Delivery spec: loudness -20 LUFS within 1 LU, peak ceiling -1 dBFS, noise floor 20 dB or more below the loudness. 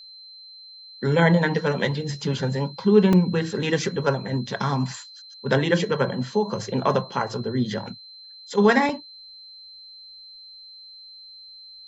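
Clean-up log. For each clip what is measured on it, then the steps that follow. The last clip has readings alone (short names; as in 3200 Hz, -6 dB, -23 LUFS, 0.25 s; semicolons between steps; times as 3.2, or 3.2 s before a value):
dropouts 2; longest dropout 2.7 ms; steady tone 4100 Hz; tone level -42 dBFS; loudness -23.0 LUFS; peak -5.0 dBFS; loudness target -20.0 LUFS
-> interpolate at 3.13/8.89, 2.7 ms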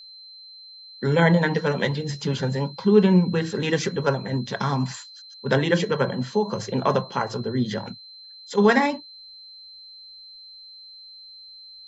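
dropouts 0; steady tone 4100 Hz; tone level -42 dBFS
-> notch 4100 Hz, Q 30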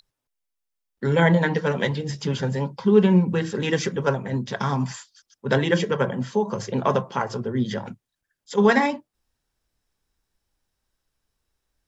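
steady tone none; loudness -23.0 LUFS; peak -5.0 dBFS; loudness target -20.0 LUFS
-> gain +3 dB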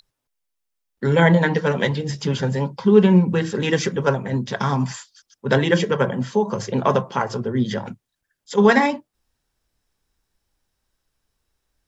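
loudness -20.0 LUFS; peak -2.0 dBFS; noise floor -79 dBFS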